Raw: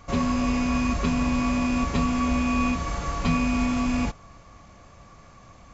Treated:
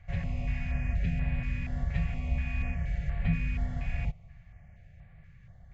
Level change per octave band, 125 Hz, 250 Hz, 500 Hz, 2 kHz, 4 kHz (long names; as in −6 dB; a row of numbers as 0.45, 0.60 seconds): −0.5, −16.0, −15.5, −9.0, −17.0 decibels